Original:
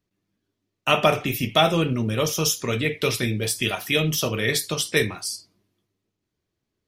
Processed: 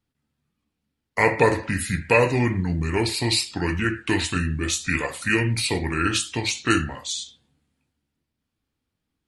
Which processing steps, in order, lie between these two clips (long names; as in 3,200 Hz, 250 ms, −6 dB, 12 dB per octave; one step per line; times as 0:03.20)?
wrong playback speed 45 rpm record played at 33 rpm